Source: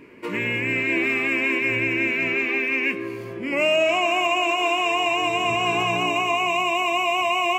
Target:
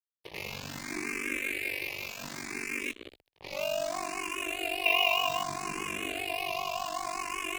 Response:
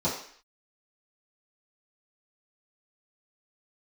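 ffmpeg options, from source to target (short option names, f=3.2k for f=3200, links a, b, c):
-filter_complex "[0:a]asettb=1/sr,asplit=3[a][b][c];[a]atrim=end=1.374[d];[b]atrim=start=1.37:end=2.2,asetpts=PTS-STARTPTS,afade=t=in:d=0.004:c=qsin,afade=t=out:st=0.826:d=0.004:c=qsin,highpass=f=460:p=1[e];[c]atrim=start=2.196[f];[d][e]acrossfade=d=0.004:c1=hsin:c2=qsin[g];[g][f]acrossfade=d=0.004:c1=qsin:c2=hsin,asettb=1/sr,asplit=3[h][i][j];[h]atrim=end=4.854[k];[i]atrim=start=4.85:end=5.43,asetpts=PTS-STARTPTS,afade=t=in:d=0.004:c=qsin,afade=t=out:st=0.576:d=0.004:c=qsin,equalizer=f=3.1k:w=0.41:g=11[l];[j]atrim=start=5.426[m];[k][l]acrossfade=d=0.004:c1=hsin:c2=qsin[n];[n][m]acrossfade=d=0.004:c1=qsin:c2=hsin,acrusher=bits=3:mix=0:aa=0.5,aeval=exprs='val(0)*sin(2*PI*24*n/s)':c=same,aeval=exprs='sgn(val(0))*max(abs(val(0))-0.0119,0)':c=same,asettb=1/sr,asplit=3[o][p][q];[o]atrim=end=2.804[r];[p]atrim=start=2.8:end=3.27,asetpts=PTS-STARTPTS,afade=t=in:d=0.004:c=qsin,afade=t=out:st=0.466:d=0.004:c=qsin,equalizer=f=1.6k:t=o:w=0.67:g=-10,equalizer=f=4k:t=o:w=0.67:g=9,equalizer=f=10k:t=o:w=0.67:g=-3[s];[q]atrim=start=3.266[t];[r][s]acrossfade=d=0.004:c1=hsin:c2=qsin[u];[u][t]acrossfade=d=0.004:c1=qsin:c2=hsin,asplit=2[v][w];[w]afreqshift=0.65[x];[v][x]amix=inputs=2:normalize=1,volume=-6dB"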